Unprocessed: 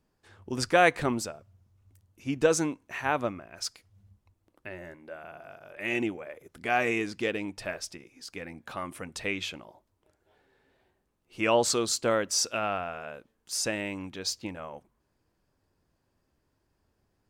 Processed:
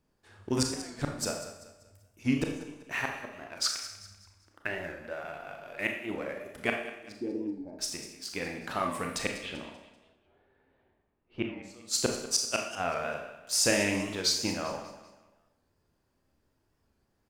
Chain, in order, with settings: 3.64–4.67 s: peaking EQ 1.5 kHz +13.5 dB 0.9 oct; waveshaping leveller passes 1; 7.12–7.79 s: cascade formant filter u; inverted gate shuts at -14 dBFS, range -33 dB; 9.37–11.58 s: distance through air 360 m; feedback delay 194 ms, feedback 38%, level -14 dB; Schroeder reverb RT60 0.68 s, combs from 27 ms, DRR 2.5 dB; warped record 45 rpm, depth 100 cents

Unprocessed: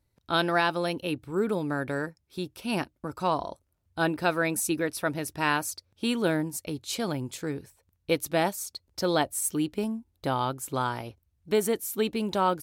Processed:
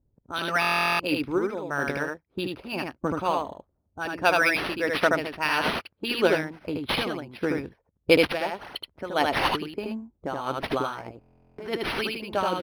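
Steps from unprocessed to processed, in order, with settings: in parallel at -3 dB: peak limiter -20.5 dBFS, peak gain reduction 9 dB; on the sum: harmonic-percussive split harmonic -13 dB; tremolo 1.6 Hz, depth 67%; dynamic bell 2.6 kHz, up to +7 dB, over -50 dBFS, Q 2.3; level-controlled noise filter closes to 490 Hz, open at -28 dBFS; on a send: delay 77 ms -3 dB; on the sum: buffer glitch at 0.60/11.19 s, samples 1024, times 16; decimation joined by straight lines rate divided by 6×; trim +5 dB

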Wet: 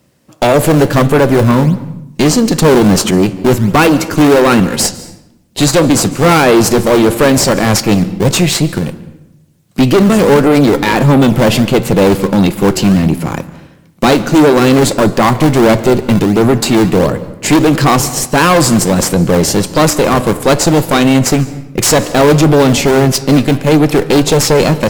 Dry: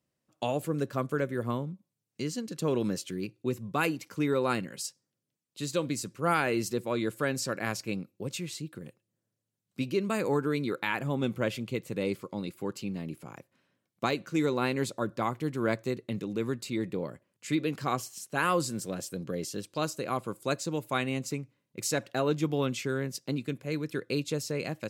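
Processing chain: dynamic bell 1.9 kHz, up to -5 dB, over -43 dBFS, Q 1.2; in parallel at -7.5 dB: decimation with a swept rate 20×, swing 160% 1.5 Hz; on the sum: valve stage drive 30 dB, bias 0.45; flange 0.66 Hz, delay 9.7 ms, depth 5.9 ms, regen -85%; on a send at -18 dB: reverberation RT60 0.80 s, pre-delay 144 ms; on the sum: loudness maximiser +33.5 dB; trim -1 dB

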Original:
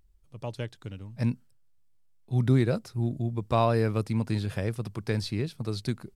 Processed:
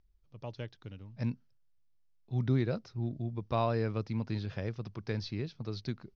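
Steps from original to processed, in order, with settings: steep low-pass 6.1 kHz 72 dB/octave; trim -6.5 dB

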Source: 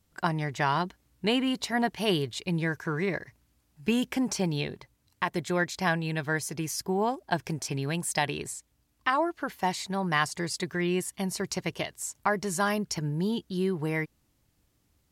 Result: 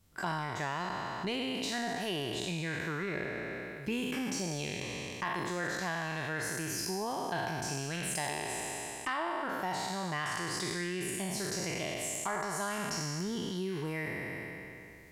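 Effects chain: spectral sustain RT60 1.87 s; compression 3:1, threshold -35 dBFS, peak gain reduction 13 dB; saturation -23 dBFS, distortion -24 dB; decay stretcher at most 21 dB/s

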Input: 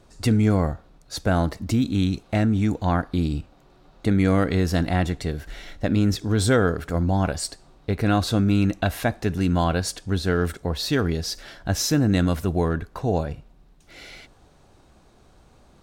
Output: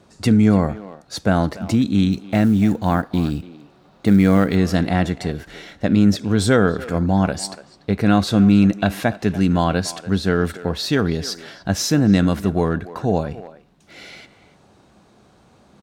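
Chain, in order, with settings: high-pass 100 Hz 12 dB/octave; treble shelf 10 kHz -7 dB; 2.12–4.56 s: short-mantissa float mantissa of 4-bit; peaking EQ 200 Hz +6.5 dB 0.23 oct; speakerphone echo 290 ms, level -15 dB; trim +3.5 dB

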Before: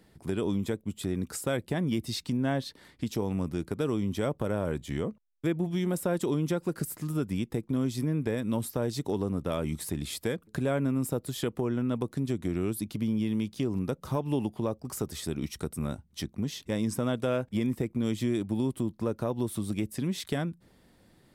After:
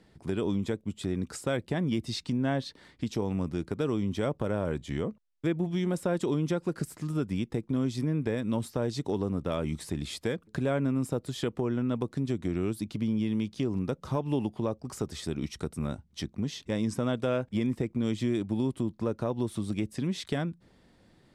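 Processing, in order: low-pass 7.2 kHz 12 dB/octave

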